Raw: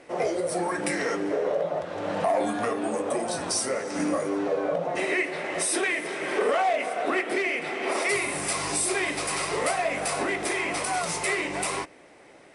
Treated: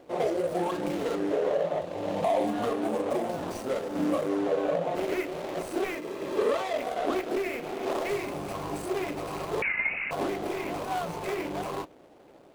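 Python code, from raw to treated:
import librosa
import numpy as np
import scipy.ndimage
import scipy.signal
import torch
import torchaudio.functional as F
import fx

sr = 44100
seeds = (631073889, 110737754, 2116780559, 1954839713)

y = scipy.ndimage.median_filter(x, 25, mode='constant')
y = fx.peak_eq(y, sr, hz=1400.0, db=-6.5, octaves=0.63, at=(1.8, 2.53))
y = fx.notch_comb(y, sr, f0_hz=730.0, at=(5.95, 6.76))
y = fx.freq_invert(y, sr, carrier_hz=2800, at=(9.62, 10.11))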